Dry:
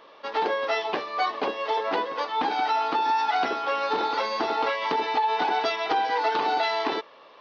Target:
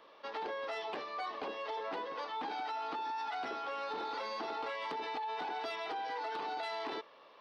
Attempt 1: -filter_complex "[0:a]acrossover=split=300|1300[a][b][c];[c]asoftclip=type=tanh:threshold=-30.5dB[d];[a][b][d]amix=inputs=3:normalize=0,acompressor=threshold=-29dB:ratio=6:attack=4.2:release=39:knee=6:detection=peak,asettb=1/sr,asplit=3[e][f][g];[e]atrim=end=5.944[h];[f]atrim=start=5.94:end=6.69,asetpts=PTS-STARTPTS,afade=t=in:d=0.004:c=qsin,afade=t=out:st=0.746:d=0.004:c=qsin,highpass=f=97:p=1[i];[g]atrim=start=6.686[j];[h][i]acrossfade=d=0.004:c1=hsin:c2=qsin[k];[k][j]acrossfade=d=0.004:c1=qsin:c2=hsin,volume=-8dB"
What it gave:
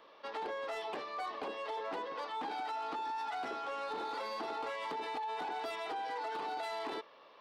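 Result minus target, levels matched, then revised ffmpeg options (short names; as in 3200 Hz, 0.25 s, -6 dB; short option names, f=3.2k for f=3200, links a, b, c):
soft clip: distortion +12 dB
-filter_complex "[0:a]acrossover=split=300|1300[a][b][c];[c]asoftclip=type=tanh:threshold=-21.5dB[d];[a][b][d]amix=inputs=3:normalize=0,acompressor=threshold=-29dB:ratio=6:attack=4.2:release=39:knee=6:detection=peak,asettb=1/sr,asplit=3[e][f][g];[e]atrim=end=5.944[h];[f]atrim=start=5.94:end=6.69,asetpts=PTS-STARTPTS,afade=t=in:d=0.004:c=qsin,afade=t=out:st=0.746:d=0.004:c=qsin,highpass=f=97:p=1[i];[g]atrim=start=6.686[j];[h][i]acrossfade=d=0.004:c1=hsin:c2=qsin[k];[k][j]acrossfade=d=0.004:c1=qsin:c2=hsin,volume=-8dB"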